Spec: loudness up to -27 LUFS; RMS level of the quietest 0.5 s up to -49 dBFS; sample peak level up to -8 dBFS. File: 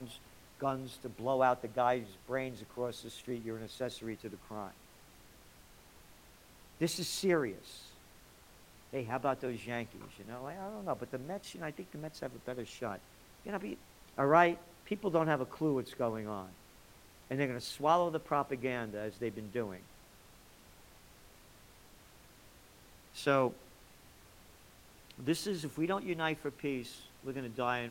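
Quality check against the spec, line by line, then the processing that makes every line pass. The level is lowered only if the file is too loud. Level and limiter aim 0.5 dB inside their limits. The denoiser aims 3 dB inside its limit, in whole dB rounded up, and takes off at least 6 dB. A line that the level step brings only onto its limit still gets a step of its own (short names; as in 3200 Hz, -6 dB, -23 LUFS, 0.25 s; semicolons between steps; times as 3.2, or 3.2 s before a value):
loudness -36.0 LUFS: OK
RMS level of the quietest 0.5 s -59 dBFS: OK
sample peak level -12.0 dBFS: OK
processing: none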